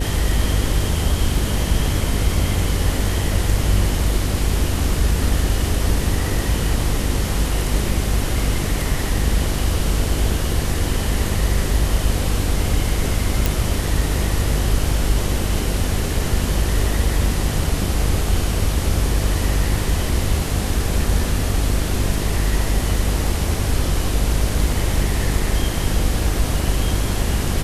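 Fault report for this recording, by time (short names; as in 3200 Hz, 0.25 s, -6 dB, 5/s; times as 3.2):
buzz 50 Hz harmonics 10 -23 dBFS
13.46 pop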